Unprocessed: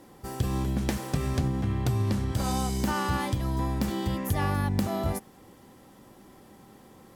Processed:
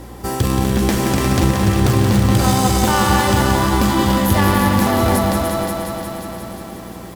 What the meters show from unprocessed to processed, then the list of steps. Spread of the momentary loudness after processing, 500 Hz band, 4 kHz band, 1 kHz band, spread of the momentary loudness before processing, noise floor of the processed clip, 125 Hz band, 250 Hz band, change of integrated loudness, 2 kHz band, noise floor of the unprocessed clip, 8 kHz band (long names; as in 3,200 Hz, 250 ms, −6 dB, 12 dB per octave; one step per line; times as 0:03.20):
13 LU, +15.5 dB, +16.0 dB, +15.5 dB, 4 LU, −34 dBFS, +11.5 dB, +14.0 dB, +13.0 dB, +15.5 dB, −54 dBFS, +16.0 dB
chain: high-pass filter 68 Hz 12 dB per octave
parametric band 150 Hz −14.5 dB 0.22 octaves
in parallel at −12 dB: bit reduction 4 bits
on the sum: mains hum 60 Hz, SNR 22 dB
on a send: multi-tap delay 292/528 ms −9.5/−11 dB
on the sum: boost into a limiter +20 dB
feedback echo at a low word length 178 ms, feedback 80%, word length 7 bits, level −6 dB
level −5 dB